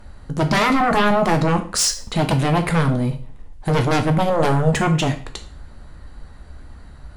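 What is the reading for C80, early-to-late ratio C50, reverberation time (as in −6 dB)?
16.5 dB, 12.0 dB, 0.45 s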